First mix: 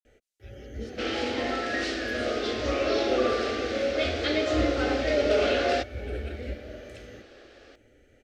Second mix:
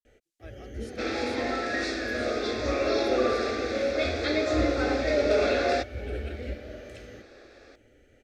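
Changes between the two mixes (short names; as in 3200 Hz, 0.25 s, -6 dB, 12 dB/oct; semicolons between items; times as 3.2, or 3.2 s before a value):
speech: remove Butterworth band-pass 3700 Hz, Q 1; second sound: add Butterworth band-stop 3000 Hz, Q 4.4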